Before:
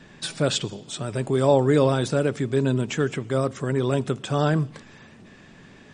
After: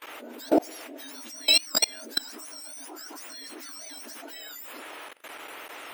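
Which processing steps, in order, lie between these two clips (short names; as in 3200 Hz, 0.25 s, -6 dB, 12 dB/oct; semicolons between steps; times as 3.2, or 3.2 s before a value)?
spectrum mirrored in octaves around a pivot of 1500 Hz; band noise 430–3000 Hz -49 dBFS; level quantiser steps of 24 dB; gain +6 dB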